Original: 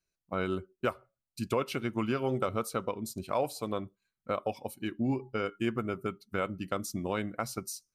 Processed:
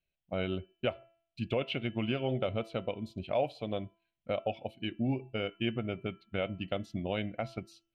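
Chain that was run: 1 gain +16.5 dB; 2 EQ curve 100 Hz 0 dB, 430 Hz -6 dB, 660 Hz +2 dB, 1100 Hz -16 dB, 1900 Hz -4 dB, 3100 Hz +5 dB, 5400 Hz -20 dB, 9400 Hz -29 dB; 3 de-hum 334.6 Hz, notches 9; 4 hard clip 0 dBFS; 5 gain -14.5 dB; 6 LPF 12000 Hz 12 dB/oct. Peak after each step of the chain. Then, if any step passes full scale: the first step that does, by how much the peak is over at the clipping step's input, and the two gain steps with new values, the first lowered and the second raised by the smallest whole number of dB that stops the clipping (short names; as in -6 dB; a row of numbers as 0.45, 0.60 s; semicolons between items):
-1.0, -4.5, -4.5, -4.5, -19.0, -19.0 dBFS; no overload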